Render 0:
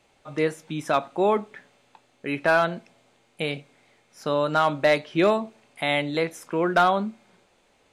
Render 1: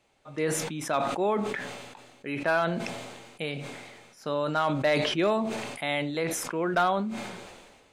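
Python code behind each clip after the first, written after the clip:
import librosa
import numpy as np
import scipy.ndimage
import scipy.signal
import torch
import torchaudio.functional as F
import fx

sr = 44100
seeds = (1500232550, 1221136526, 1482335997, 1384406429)

y = fx.sustainer(x, sr, db_per_s=37.0)
y = F.gain(torch.from_numpy(y), -5.5).numpy()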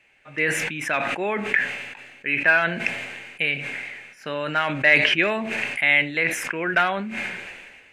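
y = fx.band_shelf(x, sr, hz=2100.0, db=15.5, octaves=1.1)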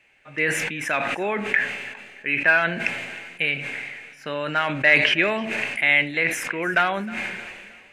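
y = fx.echo_feedback(x, sr, ms=312, feedback_pct=41, wet_db=-20.5)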